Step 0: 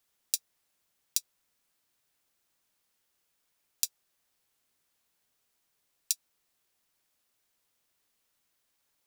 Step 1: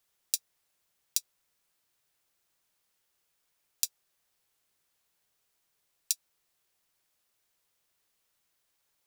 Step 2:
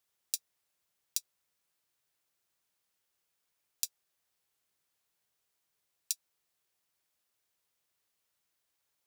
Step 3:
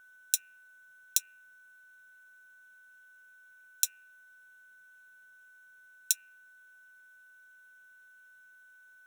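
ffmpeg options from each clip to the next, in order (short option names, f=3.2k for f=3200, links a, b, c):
-af "equalizer=f=250:t=o:w=0.27:g=-8"
-af "highpass=41,volume=-4.5dB"
-af "asuperstop=centerf=4700:order=4:qfactor=4.5,bandreject=f=91.85:t=h:w=4,bandreject=f=183.7:t=h:w=4,bandreject=f=275.55:t=h:w=4,bandreject=f=367.4:t=h:w=4,bandreject=f=459.25:t=h:w=4,bandreject=f=551.1:t=h:w=4,bandreject=f=642.95:t=h:w=4,bandreject=f=734.8:t=h:w=4,bandreject=f=826.65:t=h:w=4,bandreject=f=918.5:t=h:w=4,bandreject=f=1.01035k:t=h:w=4,bandreject=f=1.1022k:t=h:w=4,bandreject=f=1.19405k:t=h:w=4,bandreject=f=1.2859k:t=h:w=4,bandreject=f=1.37775k:t=h:w=4,bandreject=f=1.4696k:t=h:w=4,bandreject=f=1.56145k:t=h:w=4,bandreject=f=1.6533k:t=h:w=4,bandreject=f=1.74515k:t=h:w=4,bandreject=f=1.837k:t=h:w=4,bandreject=f=1.92885k:t=h:w=4,bandreject=f=2.0207k:t=h:w=4,bandreject=f=2.11255k:t=h:w=4,bandreject=f=2.2044k:t=h:w=4,bandreject=f=2.29625k:t=h:w=4,bandreject=f=2.3881k:t=h:w=4,bandreject=f=2.47995k:t=h:w=4,bandreject=f=2.5718k:t=h:w=4,bandreject=f=2.66365k:t=h:w=4,bandreject=f=2.7555k:t=h:w=4,bandreject=f=2.84735k:t=h:w=4,bandreject=f=2.9392k:t=h:w=4,bandreject=f=3.03105k:t=h:w=4,aeval=exprs='val(0)+0.000708*sin(2*PI*1500*n/s)':c=same,volume=7.5dB"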